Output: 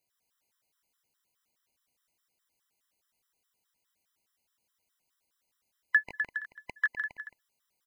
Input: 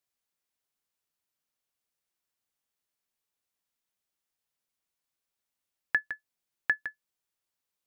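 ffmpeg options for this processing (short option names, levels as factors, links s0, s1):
-af "alimiter=limit=0.0891:level=0:latency=1:release=24,aecho=1:1:140|252|341.6|413.3|470.6:0.631|0.398|0.251|0.158|0.1,afftfilt=real='re*gt(sin(2*PI*4.8*pts/sr)*(1-2*mod(floor(b*sr/1024/1000),2)),0)':imag='im*gt(sin(2*PI*4.8*pts/sr)*(1-2*mod(floor(b*sr/1024/1000),2)),0)':win_size=1024:overlap=0.75,volume=2.37"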